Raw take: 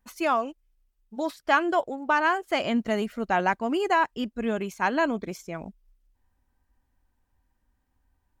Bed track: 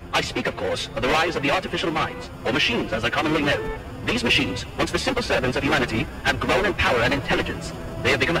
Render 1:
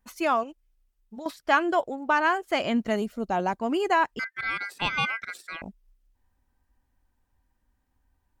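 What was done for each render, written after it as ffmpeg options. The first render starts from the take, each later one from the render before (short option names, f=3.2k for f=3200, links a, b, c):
-filter_complex "[0:a]asettb=1/sr,asplit=3[a][b][c];[a]atrim=end=0.434[d];[b]atrim=start=0.43:end=1.26,asetpts=PTS-STARTPTS,afade=t=in:d=0.004:c=qsin,afade=t=out:st=0.826:d=0.004:c=qsin,acompressor=threshold=-36dB:ratio=6:attack=3.2:release=140:knee=1:detection=peak[e];[c]atrim=start=1.256[f];[d][e]acrossfade=d=0.004:c1=hsin:c2=qsin[g];[g][f]acrossfade=d=0.004:c1=qsin:c2=hsin,asettb=1/sr,asplit=3[h][i][j];[h]atrim=end=2.964[k];[i]atrim=start=2.96:end=3.59,asetpts=PTS-STARTPTS,afade=t=in:d=0.004:c=qsin,afade=t=out:st=0.626:d=0.004:c=qsin,equalizer=f=1.9k:t=o:w=1.3:g=-11[l];[j]atrim=start=3.586[m];[k][l]acrossfade=d=0.004:c1=hsin:c2=qsin[n];[n][m]acrossfade=d=0.004:c1=qsin:c2=hsin,asettb=1/sr,asplit=3[o][p][q];[o]atrim=end=4.194[r];[p]atrim=start=4.19:end=5.62,asetpts=PTS-STARTPTS,afade=t=in:d=0.004:c=qsin,afade=t=out:st=1.426:d=0.004:c=qsin,aeval=exprs='val(0)*sin(2*PI*1800*n/s)':c=same[s];[q]atrim=start=5.616[t];[r][s]acrossfade=d=0.004:c1=hsin:c2=qsin[u];[u][t]acrossfade=d=0.004:c1=qsin:c2=hsin"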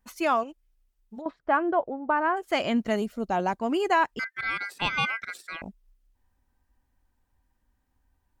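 -filter_complex "[0:a]asplit=3[a][b][c];[a]afade=t=out:st=1.2:d=0.02[d];[b]lowpass=1.3k,afade=t=in:st=1.2:d=0.02,afade=t=out:st=2.36:d=0.02[e];[c]afade=t=in:st=2.36:d=0.02[f];[d][e][f]amix=inputs=3:normalize=0"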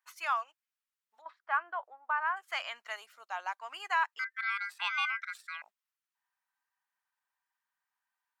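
-af "highpass=f=1.1k:w=0.5412,highpass=f=1.1k:w=1.3066,highshelf=f=2.2k:g=-8.5"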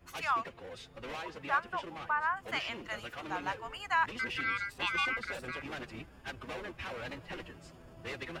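-filter_complex "[1:a]volume=-21.5dB[a];[0:a][a]amix=inputs=2:normalize=0"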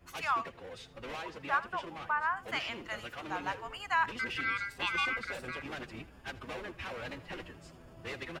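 -af "aecho=1:1:80:0.119"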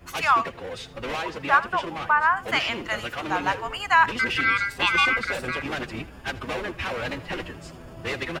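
-af "volume=11.5dB"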